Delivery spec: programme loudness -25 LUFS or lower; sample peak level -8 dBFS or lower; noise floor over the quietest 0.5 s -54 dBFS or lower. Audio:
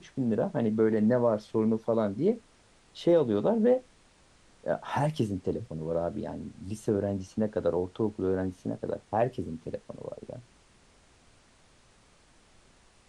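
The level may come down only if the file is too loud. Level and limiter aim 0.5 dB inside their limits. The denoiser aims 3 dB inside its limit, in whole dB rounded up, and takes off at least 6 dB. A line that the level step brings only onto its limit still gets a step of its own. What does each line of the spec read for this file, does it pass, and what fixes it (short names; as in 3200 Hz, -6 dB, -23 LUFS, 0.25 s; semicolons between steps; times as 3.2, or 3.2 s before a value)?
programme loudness -29.5 LUFS: OK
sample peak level -13.5 dBFS: OK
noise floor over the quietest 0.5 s -61 dBFS: OK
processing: none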